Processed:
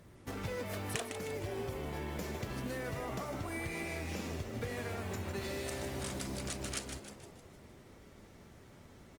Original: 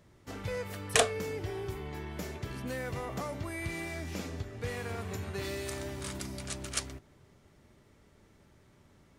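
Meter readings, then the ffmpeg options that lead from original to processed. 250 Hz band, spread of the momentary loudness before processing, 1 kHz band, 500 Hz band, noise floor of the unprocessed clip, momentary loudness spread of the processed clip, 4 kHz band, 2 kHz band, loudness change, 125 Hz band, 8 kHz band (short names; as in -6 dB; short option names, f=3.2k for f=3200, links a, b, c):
-0.5 dB, 10 LU, -3.5 dB, -3.5 dB, -63 dBFS, 18 LU, -6.0 dB, -4.0 dB, -3.5 dB, -2.0 dB, -6.5 dB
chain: -filter_complex "[0:a]acrusher=bits=5:mode=log:mix=0:aa=0.000001,acompressor=threshold=-41dB:ratio=8,bandreject=f=299.2:t=h:w=4,bandreject=f=598.4:t=h:w=4,bandreject=f=897.6:t=h:w=4,bandreject=f=1.1968k:t=h:w=4,bandreject=f=1.496k:t=h:w=4,bandreject=f=1.7952k:t=h:w=4,bandreject=f=2.0944k:t=h:w=4,bandreject=f=2.3936k:t=h:w=4,bandreject=f=2.6928k:t=h:w=4,bandreject=f=2.992k:t=h:w=4,bandreject=f=3.2912k:t=h:w=4,bandreject=f=3.5904k:t=h:w=4,bandreject=f=3.8896k:t=h:w=4,bandreject=f=4.1888k:t=h:w=4,bandreject=f=4.488k:t=h:w=4,bandreject=f=4.7872k:t=h:w=4,asplit=2[a][b];[b]asplit=6[c][d][e][f][g][h];[c]adelay=155,afreqshift=140,volume=-8dB[i];[d]adelay=310,afreqshift=280,volume=-14.2dB[j];[e]adelay=465,afreqshift=420,volume=-20.4dB[k];[f]adelay=620,afreqshift=560,volume=-26.6dB[l];[g]adelay=775,afreqshift=700,volume=-32.8dB[m];[h]adelay=930,afreqshift=840,volume=-39dB[n];[i][j][k][l][m][n]amix=inputs=6:normalize=0[o];[a][o]amix=inputs=2:normalize=0,volume=4.5dB" -ar 48000 -c:a libopus -b:a 32k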